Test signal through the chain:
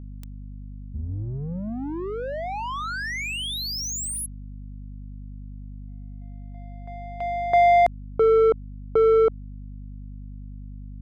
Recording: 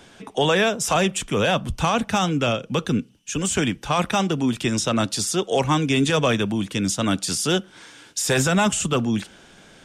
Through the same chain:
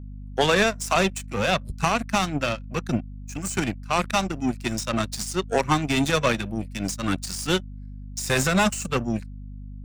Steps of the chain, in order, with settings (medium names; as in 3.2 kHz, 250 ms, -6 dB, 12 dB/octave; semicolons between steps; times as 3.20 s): spectral noise reduction 18 dB; power-law waveshaper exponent 2; hum 50 Hz, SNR 12 dB; trim +5 dB